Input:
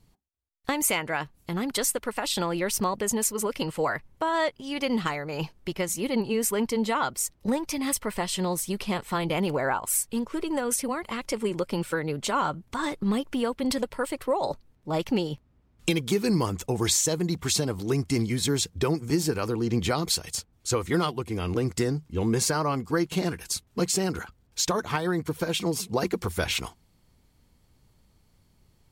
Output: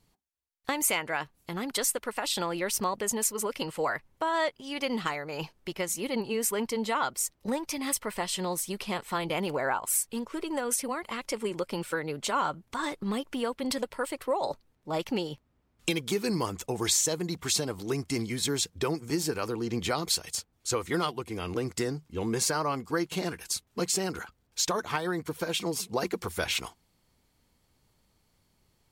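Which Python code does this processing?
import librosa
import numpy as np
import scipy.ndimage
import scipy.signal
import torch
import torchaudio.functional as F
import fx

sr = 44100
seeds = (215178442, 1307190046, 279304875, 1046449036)

y = fx.low_shelf(x, sr, hz=240.0, db=-8.5)
y = y * 10.0 ** (-1.5 / 20.0)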